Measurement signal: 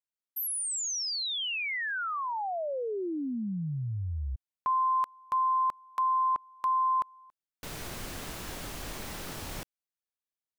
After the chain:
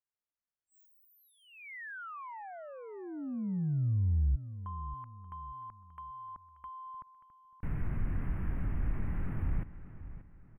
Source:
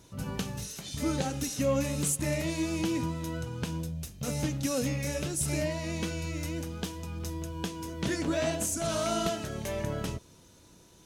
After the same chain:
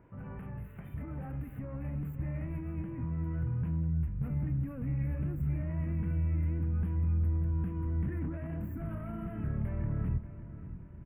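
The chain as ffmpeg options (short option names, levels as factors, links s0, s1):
-filter_complex "[0:a]aresample=16000,aresample=44100,alimiter=level_in=1.5:limit=0.0631:level=0:latency=1:release=14,volume=0.668,acompressor=threshold=0.00891:ratio=6:attack=74:release=77:knee=6:detection=peak,asoftclip=type=tanh:threshold=0.015,asplit=2[s0][s1];[s1]adelay=583,lowpass=f=4400:p=1,volume=0.2,asplit=2[s2][s3];[s3]adelay=583,lowpass=f=4400:p=1,volume=0.39,asplit=2[s4][s5];[s5]adelay=583,lowpass=f=4400:p=1,volume=0.39,asplit=2[s6][s7];[s7]adelay=583,lowpass=f=4400:p=1,volume=0.39[s8];[s2][s4][s6][s8]amix=inputs=4:normalize=0[s9];[s0][s9]amix=inputs=2:normalize=0,asubboost=boost=8.5:cutoff=180,asuperstop=centerf=5200:order=8:qfactor=0.59,volume=0.794"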